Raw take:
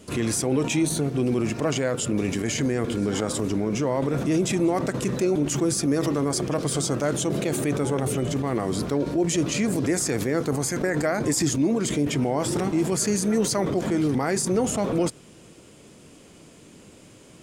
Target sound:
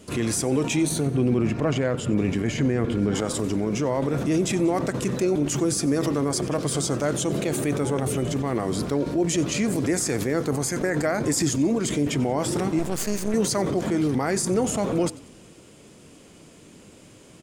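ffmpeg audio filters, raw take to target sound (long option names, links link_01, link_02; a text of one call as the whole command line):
ffmpeg -i in.wav -filter_complex "[0:a]asettb=1/sr,asplit=3[link_01][link_02][link_03];[link_01]atrim=end=1.064[link_04];[link_02]atrim=start=1.06:end=3.15,asetpts=PTS-STARTPTS,afade=type=in:duration=0.004:curve=qsin,afade=type=out:start_time=2.086:duration=0.004:curve=qsin,bass=frequency=250:gain=4,treble=frequency=4000:gain=-10[link_05];[link_03]atrim=start=3.146[link_06];[link_04][link_05]acrossfade=duration=0.004:curve1=hsin:curve2=qsin[link_07];[link_07][link_06]acrossfade=duration=0.004:curve1=qsin:curve2=hsin,asplit=5[link_08][link_09][link_10][link_11][link_12];[link_09]adelay=92,afreqshift=-35,volume=-20.5dB[link_13];[link_10]adelay=184,afreqshift=-70,volume=-26.3dB[link_14];[link_11]adelay=276,afreqshift=-105,volume=-32.2dB[link_15];[link_12]adelay=368,afreqshift=-140,volume=-38dB[link_16];[link_08][link_13][link_14][link_15][link_16]amix=inputs=5:normalize=0,asettb=1/sr,asplit=3[link_17][link_18][link_19];[link_17]atrim=end=12.794[link_20];[link_18]atrim=start=12.79:end=13.34,asetpts=PTS-STARTPTS,afade=type=in:duration=0.004:curve=qsin,afade=type=out:start_time=0.546:duration=0.004:curve=qsin,aeval=exprs='max(val(0),0)':channel_layout=same[link_21];[link_19]atrim=start=13.336[link_22];[link_20][link_21]acrossfade=duration=0.004:curve1=hsin:curve2=qsin[link_23];[link_23][link_22]acrossfade=duration=0.004:curve1=qsin:curve2=hsin" out.wav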